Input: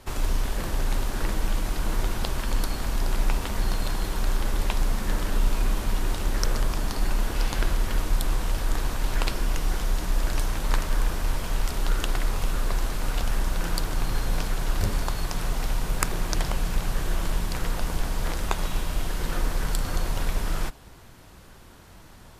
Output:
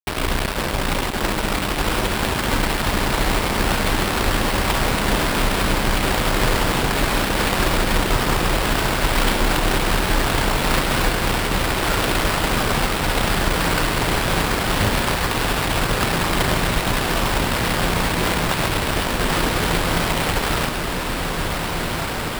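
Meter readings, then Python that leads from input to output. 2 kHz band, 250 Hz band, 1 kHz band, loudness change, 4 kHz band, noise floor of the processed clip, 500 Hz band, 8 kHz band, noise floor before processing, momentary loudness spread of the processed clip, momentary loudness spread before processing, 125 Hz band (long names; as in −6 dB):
+14.5 dB, +12.0 dB, +13.5 dB, +9.5 dB, +13.5 dB, −24 dBFS, +13.5 dB, +9.5 dB, −48 dBFS, 3 LU, 3 LU, +7.0 dB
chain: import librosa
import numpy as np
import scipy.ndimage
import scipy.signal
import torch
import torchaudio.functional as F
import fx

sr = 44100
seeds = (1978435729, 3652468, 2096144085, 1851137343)

y = fx.highpass(x, sr, hz=110.0, slope=6)
y = fx.fuzz(y, sr, gain_db=32.0, gate_db=-33.0)
y = fx.echo_diffused(y, sr, ms=1692, feedback_pct=63, wet_db=-3.5)
y = fx.sample_hold(y, sr, seeds[0], rate_hz=6400.0, jitter_pct=20)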